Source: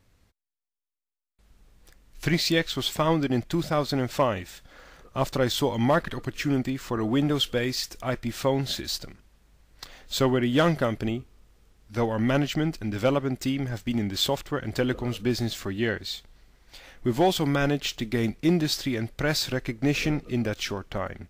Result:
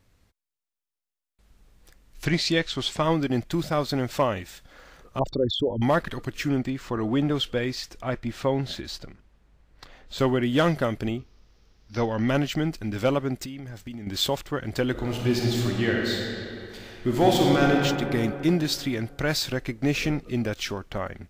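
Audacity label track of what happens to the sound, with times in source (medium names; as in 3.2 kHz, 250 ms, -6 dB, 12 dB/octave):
2.250000	3.030000	low-pass 8.2 kHz
5.190000	5.820000	resonances exaggerated exponent 3
6.480000	10.180000	low-pass 4.7 kHz -> 1.9 kHz 6 dB/octave
11.180000	12.290000	resonant high shelf 6.8 kHz -8 dB, Q 3
13.440000	14.070000	compression, threshold -34 dBFS
14.910000	17.720000	reverb throw, RT60 2.9 s, DRR -1.5 dB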